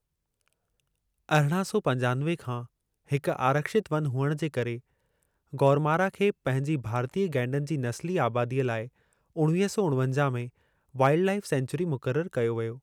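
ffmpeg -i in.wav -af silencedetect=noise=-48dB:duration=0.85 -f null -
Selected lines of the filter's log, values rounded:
silence_start: 0.00
silence_end: 1.29 | silence_duration: 1.29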